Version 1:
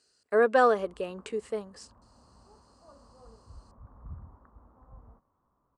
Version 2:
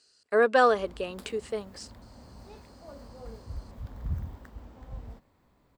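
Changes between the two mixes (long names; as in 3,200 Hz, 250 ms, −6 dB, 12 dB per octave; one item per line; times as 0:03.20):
background: remove transistor ladder low-pass 1,300 Hz, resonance 65%
master: add parametric band 3,900 Hz +7 dB 1.9 octaves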